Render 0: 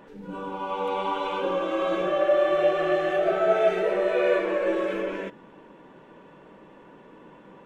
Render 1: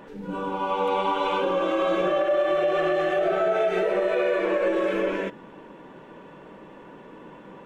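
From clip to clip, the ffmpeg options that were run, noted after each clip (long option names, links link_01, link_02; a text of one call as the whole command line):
ffmpeg -i in.wav -af "alimiter=limit=-19.5dB:level=0:latency=1:release=101,volume=4.5dB" out.wav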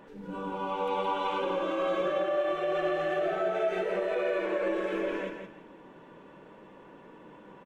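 ffmpeg -i in.wav -af "aecho=1:1:168|336|504:0.447|0.116|0.0302,volume=-7dB" out.wav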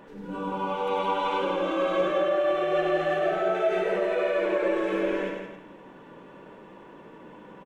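ffmpeg -i in.wav -af "aecho=1:1:99:0.531,volume=3dB" out.wav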